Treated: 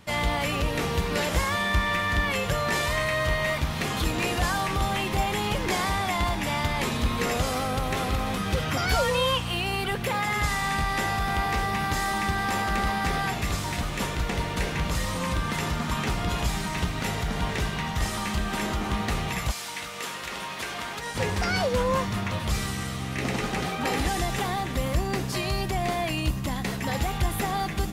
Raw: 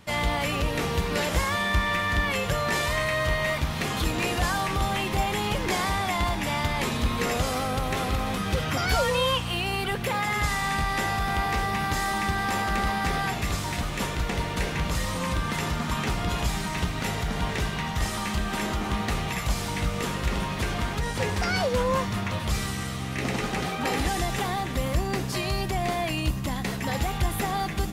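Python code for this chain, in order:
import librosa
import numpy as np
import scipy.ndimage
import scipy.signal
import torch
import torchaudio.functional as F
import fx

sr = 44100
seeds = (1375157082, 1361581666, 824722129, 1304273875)

y = fx.highpass(x, sr, hz=fx.line((19.5, 1500.0), (21.14, 580.0)), slope=6, at=(19.5, 21.14), fade=0.02)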